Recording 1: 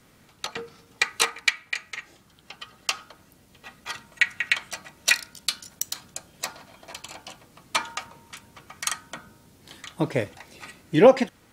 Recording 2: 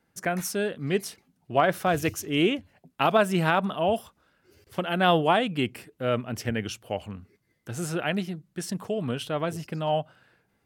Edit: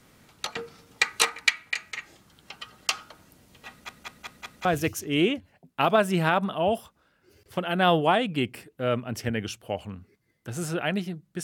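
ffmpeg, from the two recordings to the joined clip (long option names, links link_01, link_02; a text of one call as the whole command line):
ffmpeg -i cue0.wav -i cue1.wav -filter_complex "[0:a]apad=whole_dur=11.43,atrim=end=11.43,asplit=5[link_01][link_02][link_03][link_04][link_05];[link_01]atrim=end=3.892[link_06];[link_02]atrim=start=3.698:end=3.892[link_07];[link_03]atrim=start=3.698:end=3.892[link_08];[link_04]atrim=start=3.698:end=3.892[link_09];[link_05]atrim=start=3.698:end=3.892[link_10];[1:a]atrim=start=1.858:end=8.64[link_11];[link_06][link_07]acrossfade=duration=0.004:curve1=hsin:curve2=hsin[link_12];[link_12][link_08]acrossfade=duration=0.004:curve1=hsin:curve2=hsin[link_13];[link_13][link_09]acrossfade=duration=0.004:curve1=hsin:curve2=hsin[link_14];[link_14][link_10]acrossfade=duration=0.004:curve1=hsin:curve2=hsin[link_15];[link_15][link_11]acrossfade=duration=0.004:curve1=hsin:curve2=hsin" out.wav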